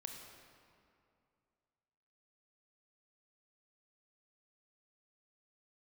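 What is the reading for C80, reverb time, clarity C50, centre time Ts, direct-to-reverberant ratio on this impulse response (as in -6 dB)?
4.5 dB, 2.5 s, 3.5 dB, 68 ms, 2.5 dB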